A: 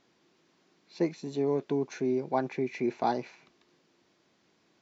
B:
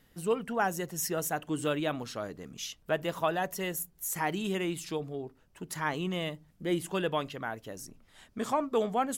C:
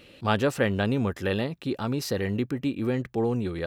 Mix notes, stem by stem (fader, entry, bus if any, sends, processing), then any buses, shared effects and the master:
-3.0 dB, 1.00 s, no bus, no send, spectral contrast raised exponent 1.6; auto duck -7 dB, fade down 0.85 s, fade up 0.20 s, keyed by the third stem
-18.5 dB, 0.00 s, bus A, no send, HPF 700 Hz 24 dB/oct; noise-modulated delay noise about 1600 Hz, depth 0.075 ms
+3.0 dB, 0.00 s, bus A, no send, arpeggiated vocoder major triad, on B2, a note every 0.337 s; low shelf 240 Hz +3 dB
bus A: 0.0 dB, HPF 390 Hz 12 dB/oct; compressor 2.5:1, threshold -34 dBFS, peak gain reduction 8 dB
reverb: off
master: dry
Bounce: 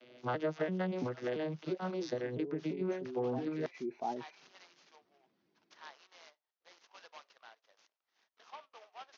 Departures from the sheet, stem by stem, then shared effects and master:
stem A -3.0 dB -> -9.0 dB; master: extra steep low-pass 6400 Hz 96 dB/oct

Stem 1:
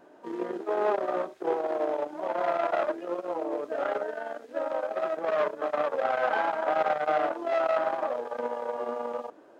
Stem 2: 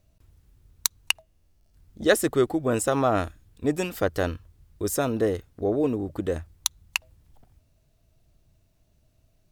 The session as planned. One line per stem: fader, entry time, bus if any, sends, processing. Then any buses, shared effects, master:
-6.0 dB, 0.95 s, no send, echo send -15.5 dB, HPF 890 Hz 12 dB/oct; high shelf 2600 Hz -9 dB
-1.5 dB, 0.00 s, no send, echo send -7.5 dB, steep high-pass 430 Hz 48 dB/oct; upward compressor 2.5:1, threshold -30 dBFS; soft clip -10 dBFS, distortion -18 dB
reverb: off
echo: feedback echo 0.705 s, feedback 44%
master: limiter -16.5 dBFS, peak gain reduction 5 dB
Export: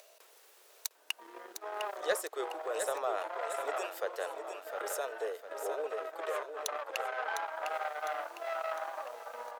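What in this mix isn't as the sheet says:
stem 1: missing high shelf 2600 Hz -9 dB; stem 2 -1.5 dB -> -10.0 dB

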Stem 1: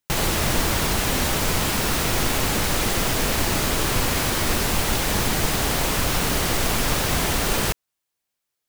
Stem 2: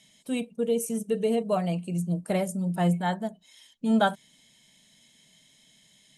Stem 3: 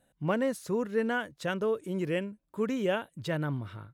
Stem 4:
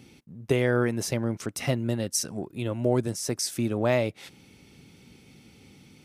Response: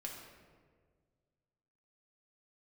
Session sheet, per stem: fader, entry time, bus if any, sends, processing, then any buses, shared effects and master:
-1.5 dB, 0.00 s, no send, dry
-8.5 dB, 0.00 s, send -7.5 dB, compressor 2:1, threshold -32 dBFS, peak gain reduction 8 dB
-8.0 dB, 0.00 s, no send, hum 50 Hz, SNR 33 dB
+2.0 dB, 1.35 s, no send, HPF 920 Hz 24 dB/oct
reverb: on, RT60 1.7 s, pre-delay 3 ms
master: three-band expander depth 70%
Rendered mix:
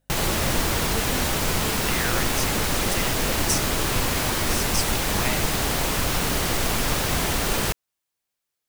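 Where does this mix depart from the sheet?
stem 2: muted; reverb: off; master: missing three-band expander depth 70%

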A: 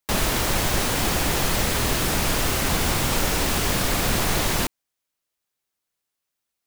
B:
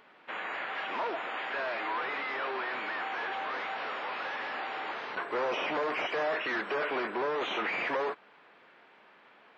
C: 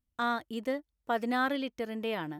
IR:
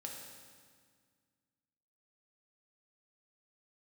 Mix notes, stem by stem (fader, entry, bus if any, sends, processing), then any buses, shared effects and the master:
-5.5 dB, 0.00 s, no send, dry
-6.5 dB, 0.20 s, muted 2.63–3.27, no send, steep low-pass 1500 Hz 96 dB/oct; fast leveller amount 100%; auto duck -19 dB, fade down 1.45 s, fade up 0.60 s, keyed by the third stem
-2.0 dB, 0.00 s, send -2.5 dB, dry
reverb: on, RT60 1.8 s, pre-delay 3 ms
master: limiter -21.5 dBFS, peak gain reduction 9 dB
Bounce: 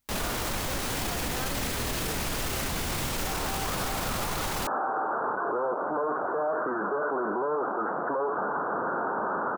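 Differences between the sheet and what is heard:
stem A -5.5 dB -> +3.0 dB; stem B -6.5 dB -> +5.0 dB

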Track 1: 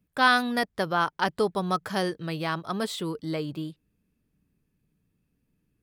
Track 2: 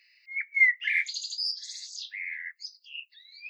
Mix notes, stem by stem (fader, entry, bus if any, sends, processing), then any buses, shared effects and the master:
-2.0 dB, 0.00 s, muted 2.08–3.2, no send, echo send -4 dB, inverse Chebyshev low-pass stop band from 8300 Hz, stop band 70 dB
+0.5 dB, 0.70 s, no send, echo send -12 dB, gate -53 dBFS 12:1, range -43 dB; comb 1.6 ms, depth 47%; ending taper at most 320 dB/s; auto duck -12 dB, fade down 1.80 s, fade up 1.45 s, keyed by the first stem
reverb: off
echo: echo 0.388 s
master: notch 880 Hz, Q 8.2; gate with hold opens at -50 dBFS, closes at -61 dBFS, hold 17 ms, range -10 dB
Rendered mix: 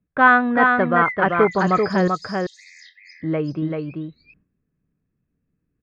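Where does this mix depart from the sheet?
stem 1 -2.0 dB -> +8.0 dB; stem 2: entry 0.70 s -> 0.45 s

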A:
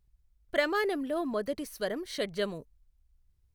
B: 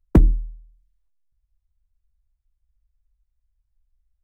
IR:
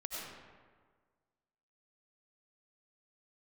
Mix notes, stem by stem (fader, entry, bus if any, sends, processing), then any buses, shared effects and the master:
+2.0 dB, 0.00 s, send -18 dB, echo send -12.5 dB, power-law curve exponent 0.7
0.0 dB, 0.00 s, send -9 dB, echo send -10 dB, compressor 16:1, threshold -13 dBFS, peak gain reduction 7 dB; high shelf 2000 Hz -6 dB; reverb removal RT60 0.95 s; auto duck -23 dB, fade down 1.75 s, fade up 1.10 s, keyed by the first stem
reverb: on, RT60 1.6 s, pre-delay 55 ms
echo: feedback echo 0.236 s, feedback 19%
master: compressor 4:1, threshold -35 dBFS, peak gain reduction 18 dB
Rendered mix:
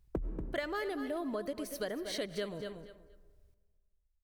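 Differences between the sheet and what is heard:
stem A: missing power-law curve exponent 0.7; stem B 0.0 dB -> -8.5 dB

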